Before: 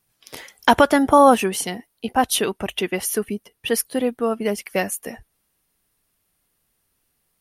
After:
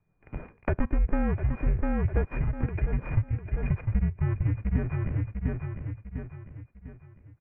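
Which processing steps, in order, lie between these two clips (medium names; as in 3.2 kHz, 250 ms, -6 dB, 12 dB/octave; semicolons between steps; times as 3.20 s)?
sorted samples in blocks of 16 samples; in parallel at +2.5 dB: peak limiter -10.5 dBFS, peak gain reduction 9 dB; on the sum: tilt shelf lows +8.5 dB, about 1.1 kHz; on a send: feedback delay 700 ms, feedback 38%, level -10.5 dB; on the sum: compression 10:1, threshold -16 dBFS, peak gain reduction 15 dB; mistuned SSB -320 Hz 160–2400 Hz; bass shelf 87 Hz +6.5 dB; trim -8.5 dB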